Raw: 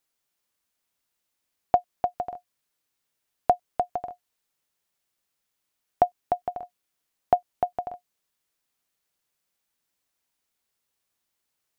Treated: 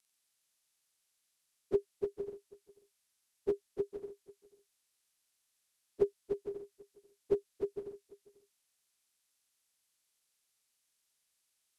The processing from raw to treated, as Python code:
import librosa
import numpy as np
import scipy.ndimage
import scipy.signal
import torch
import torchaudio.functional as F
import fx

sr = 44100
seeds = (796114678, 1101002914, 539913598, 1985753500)

p1 = fx.pitch_bins(x, sr, semitones=-10.0)
p2 = fx.high_shelf(p1, sr, hz=2100.0, db=12.0)
p3 = p2 + fx.echo_single(p2, sr, ms=491, db=-21.5, dry=0)
y = F.gain(torch.from_numpy(p3), -8.0).numpy()